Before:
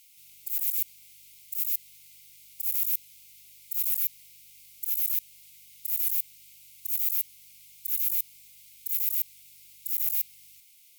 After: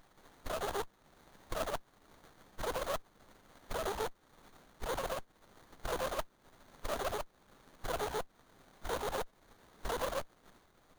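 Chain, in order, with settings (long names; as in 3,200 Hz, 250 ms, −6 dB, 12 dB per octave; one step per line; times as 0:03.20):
pitch shifter gated in a rhythm +4.5 semitones, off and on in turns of 74 ms
downward compressor 2 to 1, threshold −41 dBFS, peak gain reduction 11.5 dB
gate on every frequency bin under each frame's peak −15 dB weak
windowed peak hold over 17 samples
level +13.5 dB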